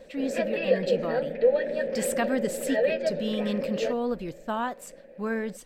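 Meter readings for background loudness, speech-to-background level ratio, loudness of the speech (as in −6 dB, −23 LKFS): −28.0 LKFS, −4.0 dB, −32.0 LKFS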